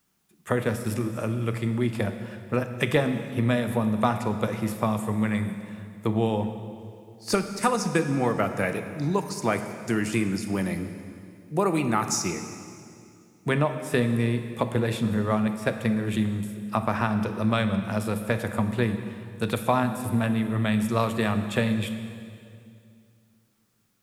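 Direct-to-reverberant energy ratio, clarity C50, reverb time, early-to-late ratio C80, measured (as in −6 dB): 8.0 dB, 9.0 dB, 2.4 s, 10.0 dB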